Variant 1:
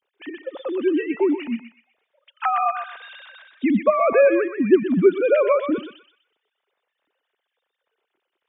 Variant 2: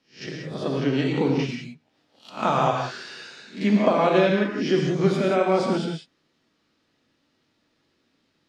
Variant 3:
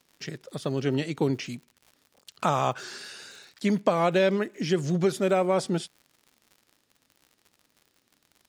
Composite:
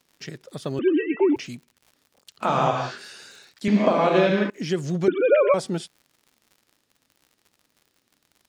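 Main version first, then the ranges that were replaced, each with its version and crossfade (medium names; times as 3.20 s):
3
0.79–1.36 s: from 1
2.45–2.98 s: from 2, crossfade 0.10 s
3.68–4.50 s: from 2
5.08–5.54 s: from 1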